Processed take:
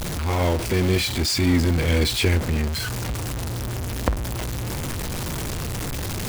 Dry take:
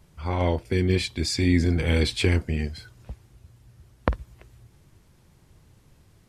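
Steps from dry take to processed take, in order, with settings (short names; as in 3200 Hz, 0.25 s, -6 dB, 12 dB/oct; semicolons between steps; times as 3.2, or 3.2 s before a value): zero-crossing step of -21 dBFS; gain -1 dB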